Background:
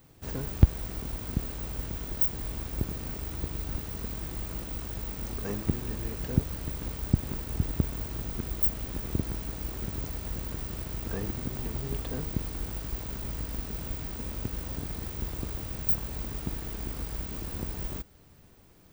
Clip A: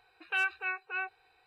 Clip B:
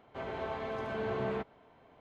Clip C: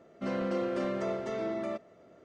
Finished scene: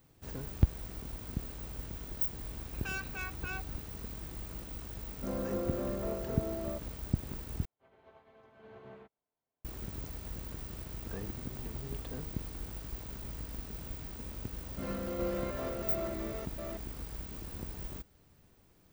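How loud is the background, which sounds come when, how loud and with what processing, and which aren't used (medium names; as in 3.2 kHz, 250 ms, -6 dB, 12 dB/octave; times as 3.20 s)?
background -7 dB
2.53 s: add A -3 dB + saturation -33 dBFS
5.01 s: add C -4 dB + low-pass 1.1 kHz
7.65 s: replace with B -16 dB + upward expansion 2.5:1, over -44 dBFS
14.56 s: add C -7.5 dB + chunks repeated in reverse 316 ms, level 0 dB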